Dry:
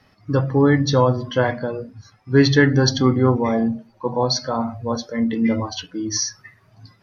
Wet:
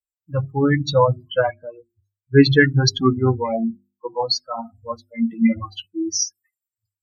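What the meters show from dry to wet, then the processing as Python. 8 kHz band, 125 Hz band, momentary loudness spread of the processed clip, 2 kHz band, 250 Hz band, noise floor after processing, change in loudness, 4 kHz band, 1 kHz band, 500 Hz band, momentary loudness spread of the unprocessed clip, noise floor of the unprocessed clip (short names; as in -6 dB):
n/a, -1.5 dB, 17 LU, +1.5 dB, -1.5 dB, under -85 dBFS, 0.0 dB, +0.5 dB, -0.5 dB, -1.0 dB, 12 LU, -57 dBFS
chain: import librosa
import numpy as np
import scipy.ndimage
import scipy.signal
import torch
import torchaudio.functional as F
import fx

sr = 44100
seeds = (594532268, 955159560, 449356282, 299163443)

y = fx.bin_expand(x, sr, power=3.0)
y = fx.hum_notches(y, sr, base_hz=50, count=8)
y = F.gain(torch.from_numpy(y), 5.5).numpy()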